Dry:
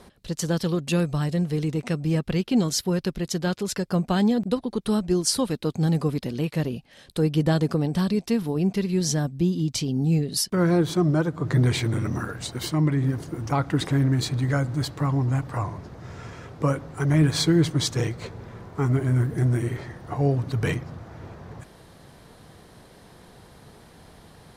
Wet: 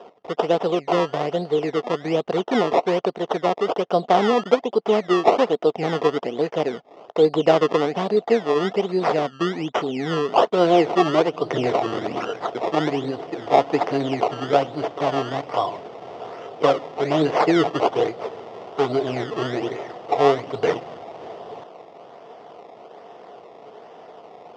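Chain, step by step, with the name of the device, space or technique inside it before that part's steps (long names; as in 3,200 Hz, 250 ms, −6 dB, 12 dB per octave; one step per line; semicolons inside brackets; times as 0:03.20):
circuit-bent sampling toy (sample-and-hold swept by an LFO 20×, swing 100% 1.2 Hz; loudspeaker in its box 430–4,400 Hz, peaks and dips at 440 Hz +7 dB, 700 Hz +9 dB, 1,600 Hz −9 dB, 2,400 Hz −7 dB, 4,100 Hz −9 dB)
level +7.5 dB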